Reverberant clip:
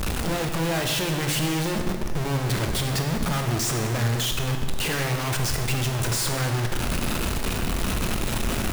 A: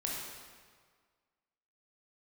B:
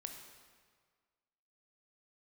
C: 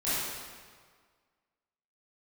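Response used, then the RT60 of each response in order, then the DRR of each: B; 1.7, 1.7, 1.7 s; -3.5, 3.5, -13.5 dB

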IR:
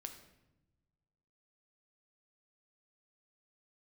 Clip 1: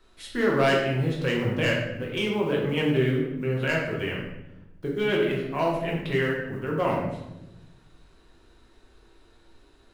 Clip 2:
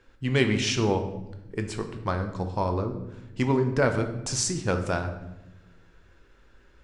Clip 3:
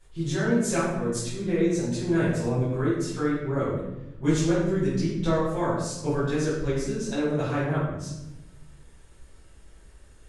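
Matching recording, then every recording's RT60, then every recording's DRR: 2; 0.95 s, not exponential, 0.95 s; -3.0, 5.5, -13.0 dB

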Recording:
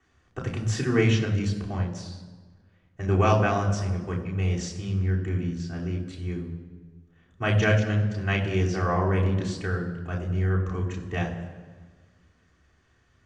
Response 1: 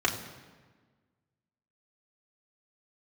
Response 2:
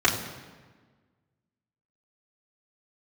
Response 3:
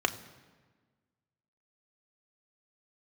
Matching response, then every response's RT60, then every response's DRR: 2; 1.4, 1.4, 1.4 s; -2.0, -6.0, 6.5 dB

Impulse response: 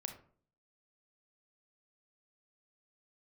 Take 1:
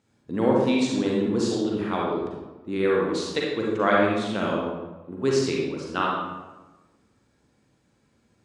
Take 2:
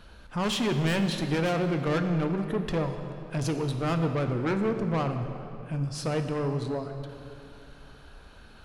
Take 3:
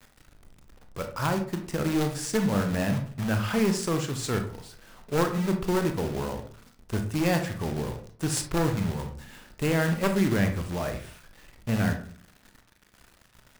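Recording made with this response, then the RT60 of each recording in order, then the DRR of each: 3; 1.2, 2.9, 0.50 s; -3.5, 5.5, 5.5 dB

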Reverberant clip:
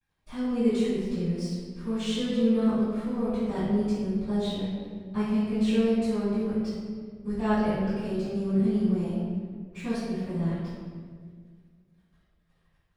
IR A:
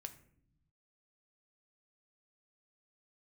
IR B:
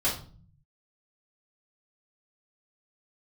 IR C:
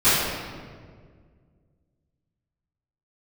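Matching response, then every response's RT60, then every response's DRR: C; 0.60, 0.45, 1.8 s; 7.5, -9.0, -19.5 dB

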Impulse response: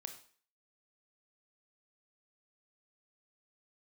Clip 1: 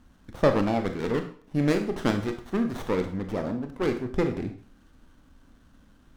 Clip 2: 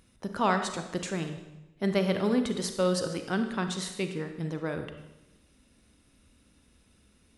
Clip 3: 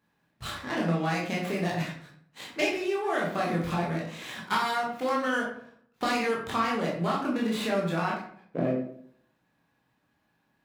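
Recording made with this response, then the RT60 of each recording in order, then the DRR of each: 1; 0.45, 1.0, 0.60 s; 6.0, 6.5, -4.0 dB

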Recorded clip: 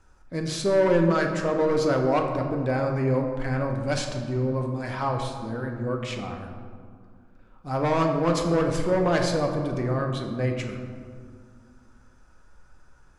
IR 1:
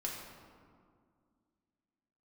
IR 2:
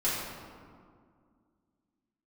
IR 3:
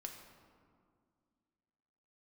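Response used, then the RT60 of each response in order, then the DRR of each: 3; 2.1, 2.1, 2.1 s; -3.0, -10.0, 2.0 dB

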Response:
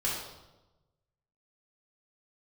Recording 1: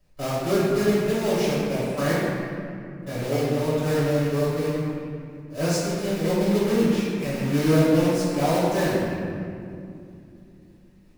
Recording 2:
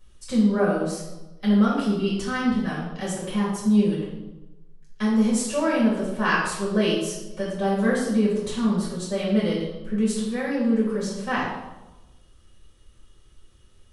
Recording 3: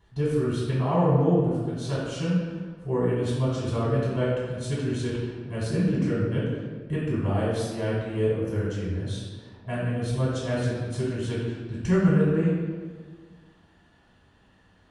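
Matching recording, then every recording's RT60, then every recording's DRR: 2; 2.6, 1.0, 1.6 s; -11.0, -7.5, -10.0 dB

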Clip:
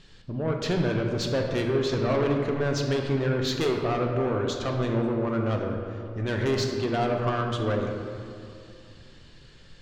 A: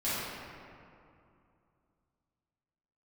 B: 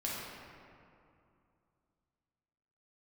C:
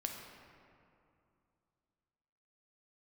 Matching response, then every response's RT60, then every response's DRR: C; 2.6, 2.6, 2.6 s; -13.0, -6.5, 1.5 dB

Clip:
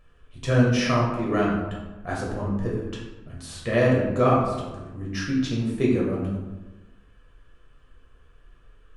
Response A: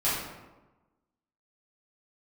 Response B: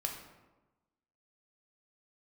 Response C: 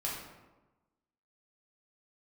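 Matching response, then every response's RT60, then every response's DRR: C; 1.1, 1.1, 1.1 s; -11.5, 1.5, -5.0 dB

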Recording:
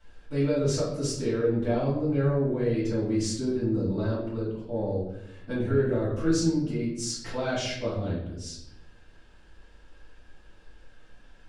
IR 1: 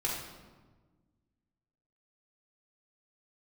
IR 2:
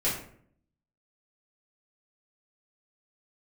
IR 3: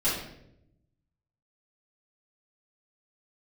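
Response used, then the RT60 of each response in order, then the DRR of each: 3; 1.4, 0.60, 0.75 s; -4.5, -9.5, -13.0 dB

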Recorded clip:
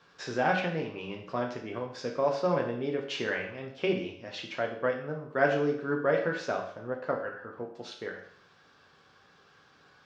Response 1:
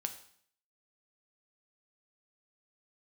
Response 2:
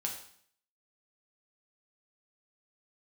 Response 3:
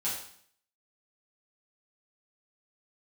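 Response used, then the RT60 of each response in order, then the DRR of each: 2; 0.60, 0.60, 0.60 s; 6.0, -0.5, -9.0 dB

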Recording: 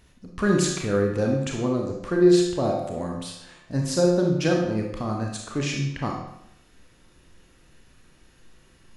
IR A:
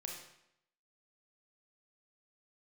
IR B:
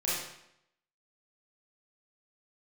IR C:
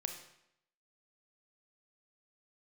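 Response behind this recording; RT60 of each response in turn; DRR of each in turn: A; 0.75, 0.75, 0.75 s; -0.5, -8.5, 5.0 dB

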